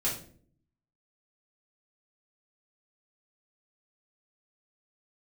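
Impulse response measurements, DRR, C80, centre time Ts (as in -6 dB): -7.5 dB, 11.5 dB, 29 ms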